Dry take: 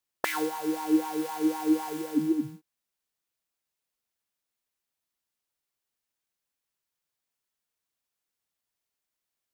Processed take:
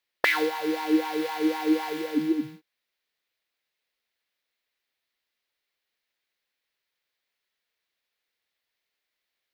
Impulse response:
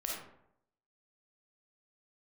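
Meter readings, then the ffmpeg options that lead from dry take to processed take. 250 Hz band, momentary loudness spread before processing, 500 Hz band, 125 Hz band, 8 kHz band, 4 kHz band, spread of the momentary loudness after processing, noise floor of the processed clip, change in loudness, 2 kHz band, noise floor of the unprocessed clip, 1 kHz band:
+1.0 dB, 5 LU, +4.5 dB, -3.5 dB, -3.5 dB, +7.5 dB, 6 LU, -84 dBFS, +2.5 dB, +10.0 dB, under -85 dBFS, +2.5 dB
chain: -af "equalizer=f=125:t=o:w=1:g=-3,equalizer=f=500:t=o:w=1:g=7,equalizer=f=2000:t=o:w=1:g=11,equalizer=f=4000:t=o:w=1:g=9,equalizer=f=8000:t=o:w=1:g=-6,volume=0.841"

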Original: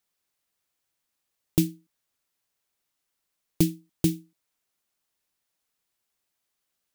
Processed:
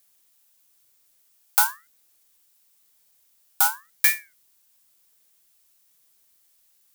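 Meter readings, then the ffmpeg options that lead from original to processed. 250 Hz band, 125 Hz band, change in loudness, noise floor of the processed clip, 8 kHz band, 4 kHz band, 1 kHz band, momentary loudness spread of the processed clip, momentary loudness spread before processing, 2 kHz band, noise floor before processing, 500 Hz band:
under -30 dB, under -30 dB, +6.5 dB, -64 dBFS, +10.5 dB, +6.5 dB, +26.0 dB, 3 LU, 4 LU, +23.5 dB, -81 dBFS, under -15 dB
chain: -filter_complex "[0:a]highpass=290,crystalizer=i=2:c=0,asuperstop=centerf=720:order=8:qfactor=0.94,asplit=2[s0][s1];[s1]aeval=exprs='clip(val(0),-1,0.126)':c=same,volume=0.501[s2];[s0][s2]amix=inputs=2:normalize=0,alimiter=level_in=2:limit=0.891:release=50:level=0:latency=1,aeval=exprs='val(0)*sin(2*PI*1600*n/s+1600*0.3/0.97*sin(2*PI*0.97*n/s))':c=same"

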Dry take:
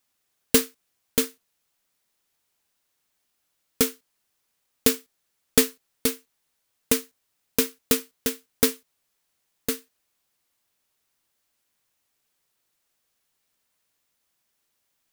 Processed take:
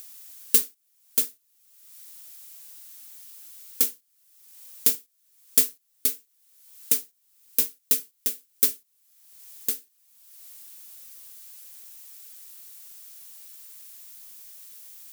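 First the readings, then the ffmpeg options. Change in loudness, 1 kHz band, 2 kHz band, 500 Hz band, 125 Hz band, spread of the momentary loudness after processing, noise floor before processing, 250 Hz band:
+1.0 dB, under -10 dB, -10.0 dB, -16.0 dB, under -10 dB, 22 LU, -76 dBFS, -16.0 dB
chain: -af "crystalizer=i=5.5:c=0,acompressor=mode=upward:threshold=0.447:ratio=2.5,volume=0.15"

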